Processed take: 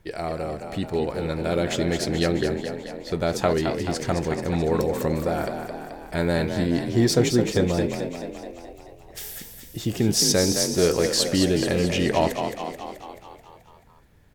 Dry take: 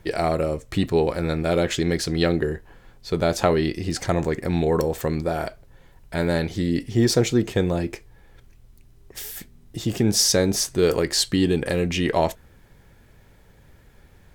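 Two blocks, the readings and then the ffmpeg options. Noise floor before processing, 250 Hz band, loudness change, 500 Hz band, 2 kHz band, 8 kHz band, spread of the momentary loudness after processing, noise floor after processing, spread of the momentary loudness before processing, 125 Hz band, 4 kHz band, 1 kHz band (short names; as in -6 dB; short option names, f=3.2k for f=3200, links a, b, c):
-53 dBFS, -0.5 dB, -1.0 dB, -1.0 dB, -0.5 dB, -0.5 dB, 16 LU, -52 dBFS, 13 LU, -1.5 dB, -0.5 dB, -0.5 dB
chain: -filter_complex "[0:a]dynaudnorm=f=130:g=21:m=11.5dB,asplit=9[a][b][c][d][e][f][g][h][i];[b]adelay=216,afreqshift=41,volume=-7dB[j];[c]adelay=432,afreqshift=82,volume=-11.3dB[k];[d]adelay=648,afreqshift=123,volume=-15.6dB[l];[e]adelay=864,afreqshift=164,volume=-19.9dB[m];[f]adelay=1080,afreqshift=205,volume=-24.2dB[n];[g]adelay=1296,afreqshift=246,volume=-28.5dB[o];[h]adelay=1512,afreqshift=287,volume=-32.8dB[p];[i]adelay=1728,afreqshift=328,volume=-37.1dB[q];[a][j][k][l][m][n][o][p][q]amix=inputs=9:normalize=0,volume=-7dB"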